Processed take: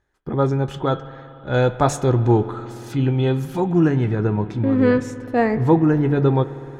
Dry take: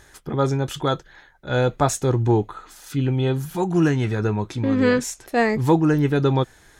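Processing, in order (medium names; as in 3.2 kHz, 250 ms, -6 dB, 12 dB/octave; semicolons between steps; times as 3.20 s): low-pass 1.4 kHz 6 dB/octave, from 1.54 s 3.8 kHz, from 3.60 s 1.1 kHz; spring tank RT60 3.9 s, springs 57 ms, chirp 35 ms, DRR 14 dB; gate with hold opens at -35 dBFS; de-hum 145.4 Hz, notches 26; trim +2.5 dB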